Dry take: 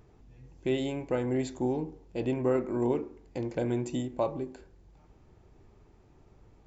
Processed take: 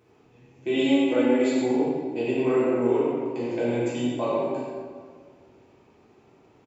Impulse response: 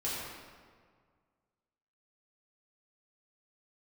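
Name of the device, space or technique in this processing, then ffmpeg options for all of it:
PA in a hall: -filter_complex "[0:a]asettb=1/sr,asplit=3[link_01][link_02][link_03];[link_01]atrim=end=0.734[link_04];[link_02]atrim=start=0.73:end=1.51,asetpts=PTS-STARTPTS,afade=type=in:duration=0.004:curve=qsin,afade=type=out:start_time=0.776:duration=0.004:curve=qsin,aecho=1:1:3.5:0.93,atrim=end_sample=34398[link_05];[link_03]atrim=start=1.506[link_06];[link_04][link_05]acrossfade=duration=0.004:curve1=hsin:curve2=qsin[link_07];[link_07][link_06]acrossfade=duration=0.004:curve1=qsin:curve2=hsin,highpass=200,equalizer=frequency=2600:width_type=o:width=0.55:gain=6,aecho=1:1:90:0.447[link_08];[1:a]atrim=start_sample=2205[link_09];[link_08][link_09]afir=irnorm=-1:irlink=0"

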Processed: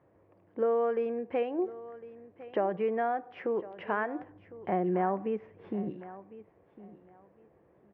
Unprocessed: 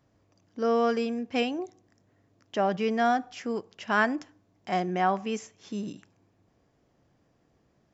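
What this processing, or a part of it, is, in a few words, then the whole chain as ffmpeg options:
bass amplifier: -filter_complex "[0:a]asettb=1/sr,asplit=3[link_01][link_02][link_03];[link_01]atrim=end=4.194[link_04];[link_02]atrim=start=4.19:end=5.9,asetpts=PTS-STARTPTS,afade=type=in:duration=0.004:curve=qsin,afade=type=out:start_time=1.706:duration=0.004:curve=qsin,aemphasis=mode=reproduction:type=bsi[link_05];[link_03]atrim=start=5.896[link_06];[link_04][link_05]acrossfade=duration=0.004:curve1=hsin:curve2=qsin[link_07];[link_07][link_06]acrossfade=duration=0.004:curve1=qsin:curve2=hsin,acompressor=threshold=-34dB:ratio=3,highpass=77,equalizer=frequency=120:width_type=q:width=4:gain=-7,equalizer=frequency=250:width_type=q:width=4:gain=-8,equalizer=frequency=360:width_type=q:width=4:gain=6,equalizer=frequency=510:width_type=q:width=4:gain=7,equalizer=frequency=930:width_type=q:width=4:gain=3,equalizer=frequency=1400:width_type=q:width=4:gain=-3,lowpass=frequency=2100:width=0.5412,lowpass=frequency=2100:width=1.3066,aecho=1:1:1055|2110:0.141|0.0297,volume=3dB"

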